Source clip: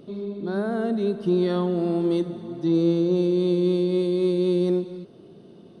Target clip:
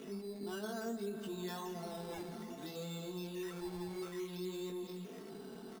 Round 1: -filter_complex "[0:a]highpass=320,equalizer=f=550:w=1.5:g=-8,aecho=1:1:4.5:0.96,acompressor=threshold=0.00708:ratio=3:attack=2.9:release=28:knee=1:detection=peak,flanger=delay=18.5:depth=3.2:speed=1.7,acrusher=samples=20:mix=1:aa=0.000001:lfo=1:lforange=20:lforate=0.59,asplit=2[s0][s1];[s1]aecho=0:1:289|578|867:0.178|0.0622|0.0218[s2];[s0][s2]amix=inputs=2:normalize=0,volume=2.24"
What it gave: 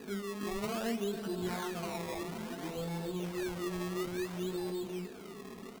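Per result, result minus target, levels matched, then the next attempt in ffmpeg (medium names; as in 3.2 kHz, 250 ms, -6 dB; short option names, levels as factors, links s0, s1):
echo 119 ms late; compression: peak gain reduction -5.5 dB; decimation with a swept rate: distortion +7 dB
-filter_complex "[0:a]highpass=320,equalizer=f=550:w=1.5:g=-8,aecho=1:1:4.5:0.96,acompressor=threshold=0.00708:ratio=3:attack=2.9:release=28:knee=1:detection=peak,flanger=delay=18.5:depth=3.2:speed=1.7,acrusher=samples=20:mix=1:aa=0.000001:lfo=1:lforange=20:lforate=0.59,asplit=2[s0][s1];[s1]aecho=0:1:170|340|510:0.178|0.0622|0.0218[s2];[s0][s2]amix=inputs=2:normalize=0,volume=2.24"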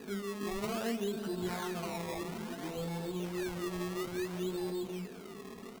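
compression: peak gain reduction -5.5 dB; decimation with a swept rate: distortion +7 dB
-filter_complex "[0:a]highpass=320,equalizer=f=550:w=1.5:g=-8,aecho=1:1:4.5:0.96,acompressor=threshold=0.00266:ratio=3:attack=2.9:release=28:knee=1:detection=peak,flanger=delay=18.5:depth=3.2:speed=1.7,acrusher=samples=20:mix=1:aa=0.000001:lfo=1:lforange=20:lforate=0.59,asplit=2[s0][s1];[s1]aecho=0:1:170|340|510:0.178|0.0622|0.0218[s2];[s0][s2]amix=inputs=2:normalize=0,volume=2.24"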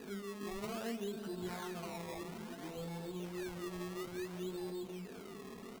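decimation with a swept rate: distortion +7 dB
-filter_complex "[0:a]highpass=320,equalizer=f=550:w=1.5:g=-8,aecho=1:1:4.5:0.96,acompressor=threshold=0.00266:ratio=3:attack=2.9:release=28:knee=1:detection=peak,flanger=delay=18.5:depth=3.2:speed=1.7,acrusher=samples=7:mix=1:aa=0.000001:lfo=1:lforange=7:lforate=0.59,asplit=2[s0][s1];[s1]aecho=0:1:170|340|510:0.178|0.0622|0.0218[s2];[s0][s2]amix=inputs=2:normalize=0,volume=2.24"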